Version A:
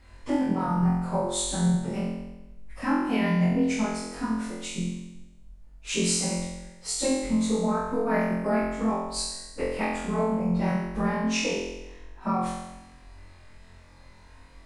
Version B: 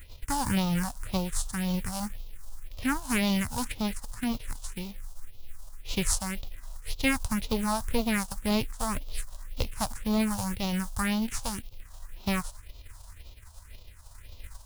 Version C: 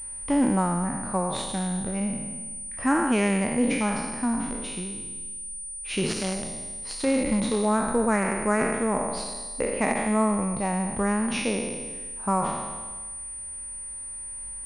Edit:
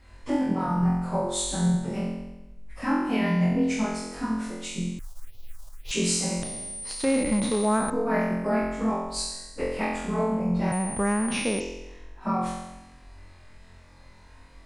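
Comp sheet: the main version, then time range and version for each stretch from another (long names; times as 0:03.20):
A
0:04.99–0:05.91: punch in from B
0:06.43–0:07.90: punch in from C
0:10.72–0:11.60: punch in from C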